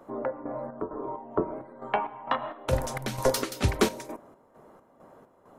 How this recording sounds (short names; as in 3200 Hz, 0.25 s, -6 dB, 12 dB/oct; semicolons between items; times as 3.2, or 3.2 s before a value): chopped level 2.2 Hz, depth 60%, duty 55%